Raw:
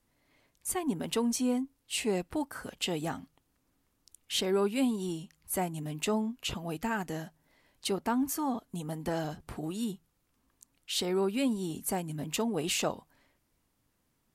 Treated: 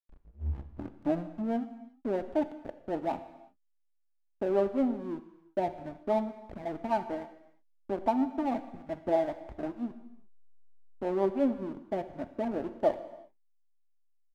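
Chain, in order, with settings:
turntable start at the beginning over 1.64 s
low-pass with resonance 720 Hz, resonance Q 4.2
spectral tilt +1.5 dB per octave
comb filter 3.4 ms, depth 60%
rotating-speaker cabinet horn 6.3 Hz
slack as between gear wheels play −33.5 dBFS
reverb whose tail is shaped and stops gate 390 ms falling, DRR 10 dB
level +1 dB

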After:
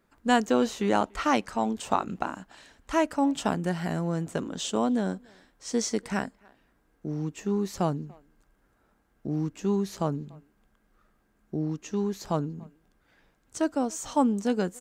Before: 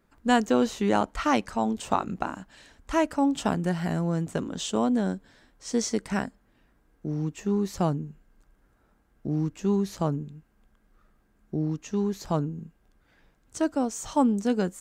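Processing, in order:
low-shelf EQ 150 Hz −6 dB
far-end echo of a speakerphone 290 ms, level −25 dB

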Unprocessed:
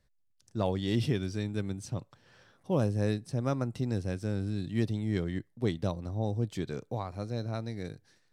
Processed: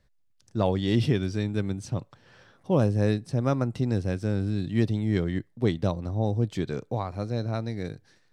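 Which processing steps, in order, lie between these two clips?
high-shelf EQ 7,200 Hz −8.5 dB
level +5.5 dB

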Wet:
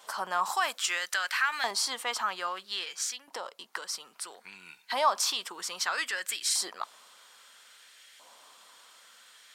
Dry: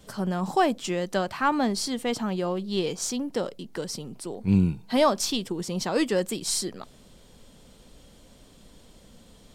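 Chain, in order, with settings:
0:00.45–0:01.71: spectral tilt +2 dB per octave
0:02.83–0:04.19: downward compressor 4 to 1, threshold −33 dBFS, peak gain reduction 9 dB
brickwall limiter −20.5 dBFS, peak gain reduction 10 dB
auto-filter high-pass saw up 0.61 Hz 910–1,900 Hz
level +2.5 dB

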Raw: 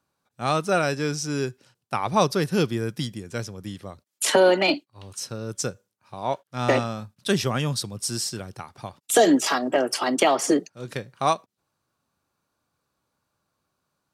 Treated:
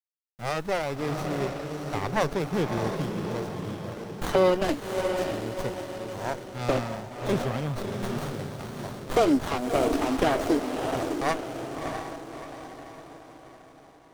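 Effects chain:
bit-depth reduction 8 bits, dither none
feedback delay with all-pass diffusion 643 ms, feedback 49%, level −5 dB
windowed peak hold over 17 samples
level −3.5 dB

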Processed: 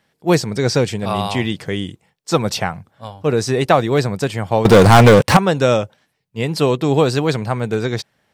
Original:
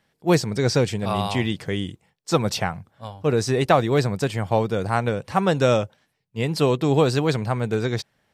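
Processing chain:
low-shelf EQ 63 Hz −7.5 dB
0:04.65–0:05.37: leveller curve on the samples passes 5
level +4 dB

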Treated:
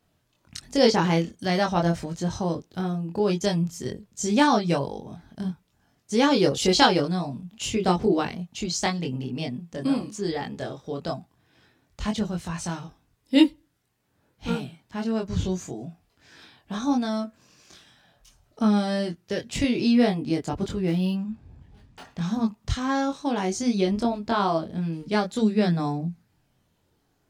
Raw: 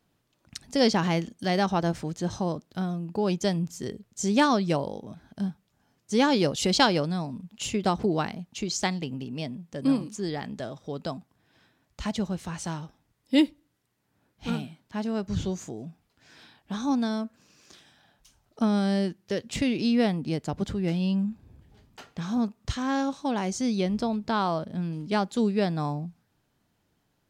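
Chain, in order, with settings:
multi-voice chorus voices 4, 0.13 Hz, delay 23 ms, depth 1.6 ms
0:20.87–0:22.05: linearly interpolated sample-rate reduction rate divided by 3×
level +5.5 dB

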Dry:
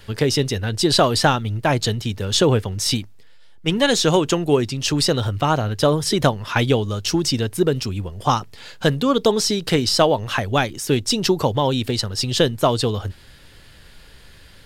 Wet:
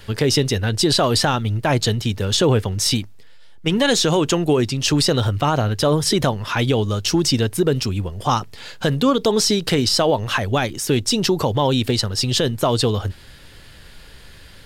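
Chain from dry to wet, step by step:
brickwall limiter −11 dBFS, peak gain reduction 8.5 dB
level +3 dB

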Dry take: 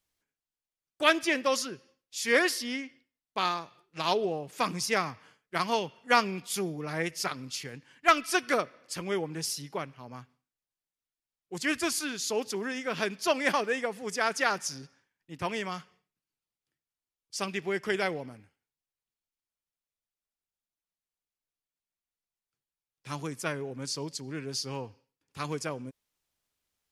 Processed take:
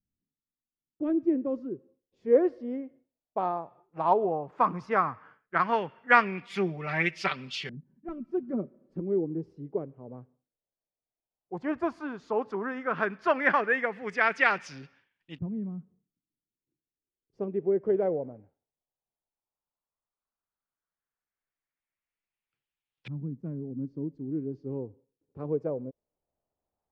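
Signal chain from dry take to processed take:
0:06.49–0:09.00: comb filter 5.2 ms, depth 69%
auto-filter low-pass saw up 0.13 Hz 200–3,200 Hz

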